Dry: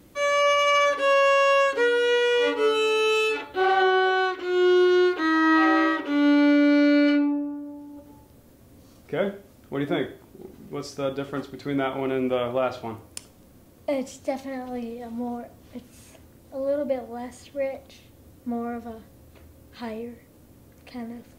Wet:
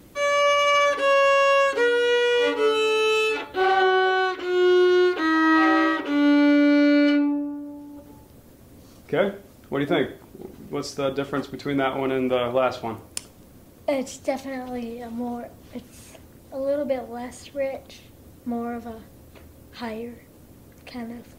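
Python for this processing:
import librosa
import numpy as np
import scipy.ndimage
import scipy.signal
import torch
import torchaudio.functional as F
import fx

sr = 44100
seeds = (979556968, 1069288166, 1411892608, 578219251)

y = fx.hpss(x, sr, part='harmonic', gain_db=-5)
y = y * 10.0 ** (6.0 / 20.0)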